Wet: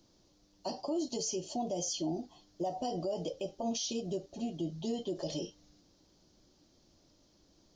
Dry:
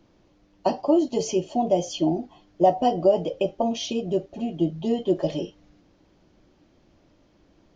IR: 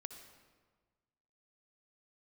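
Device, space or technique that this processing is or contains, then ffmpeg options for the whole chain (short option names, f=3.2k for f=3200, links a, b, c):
over-bright horn tweeter: -af "highshelf=f=3.4k:t=q:w=1.5:g=11.5,alimiter=limit=-19dB:level=0:latency=1:release=71,volume=-8dB"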